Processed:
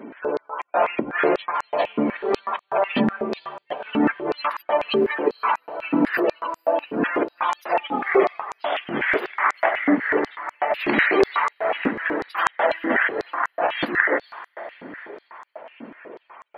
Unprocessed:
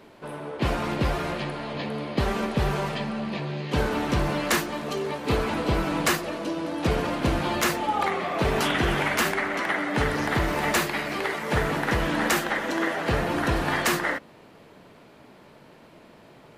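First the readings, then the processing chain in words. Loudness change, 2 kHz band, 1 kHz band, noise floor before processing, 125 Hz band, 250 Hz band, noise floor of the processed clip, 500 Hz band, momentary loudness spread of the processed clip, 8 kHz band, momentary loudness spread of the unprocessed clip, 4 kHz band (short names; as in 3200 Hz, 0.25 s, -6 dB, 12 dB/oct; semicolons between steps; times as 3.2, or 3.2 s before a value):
+3.0 dB, +4.0 dB, +4.0 dB, -51 dBFS, -12.0 dB, +2.5 dB, -66 dBFS, +5.5 dB, 17 LU, under -15 dB, 7 LU, -3.5 dB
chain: negative-ratio compressor -28 dBFS, ratio -0.5; bell 7000 Hz -13.5 dB 0.75 oct; spectral gate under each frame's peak -20 dB strong; diffused feedback echo 0.479 s, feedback 49%, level -15 dB; stepped high-pass 8.1 Hz 250–7100 Hz; gain +4.5 dB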